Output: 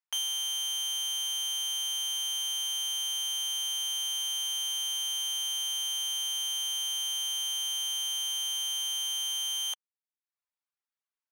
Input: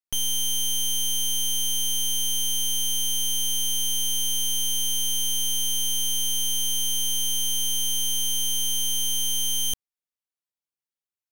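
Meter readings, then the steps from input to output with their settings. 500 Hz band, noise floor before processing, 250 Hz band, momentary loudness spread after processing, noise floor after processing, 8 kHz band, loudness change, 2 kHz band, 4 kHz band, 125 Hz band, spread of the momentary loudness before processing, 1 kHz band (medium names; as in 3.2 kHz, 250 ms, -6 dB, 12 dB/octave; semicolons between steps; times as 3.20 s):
under -10 dB, under -85 dBFS, under -30 dB, 0 LU, under -85 dBFS, -8.0 dB, -6.0 dB, -0.5 dB, -3.0 dB, under -40 dB, 0 LU, +0.5 dB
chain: tilt EQ -3 dB/octave; reverb removal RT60 0.59 s; high-pass 880 Hz 24 dB/octave; treble shelf 6.1 kHz -5 dB; trim +5 dB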